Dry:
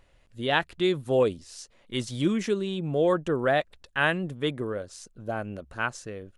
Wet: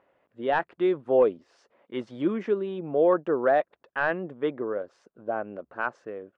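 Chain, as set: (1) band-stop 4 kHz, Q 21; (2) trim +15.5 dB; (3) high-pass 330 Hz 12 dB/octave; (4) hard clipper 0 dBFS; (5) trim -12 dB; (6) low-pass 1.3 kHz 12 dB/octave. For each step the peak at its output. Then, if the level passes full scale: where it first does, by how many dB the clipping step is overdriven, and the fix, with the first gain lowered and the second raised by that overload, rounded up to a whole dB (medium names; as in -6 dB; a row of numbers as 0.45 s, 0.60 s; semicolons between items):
-8.0 dBFS, +7.5 dBFS, +8.0 dBFS, 0.0 dBFS, -12.0 dBFS, -11.5 dBFS; step 2, 8.0 dB; step 2 +7.5 dB, step 5 -4 dB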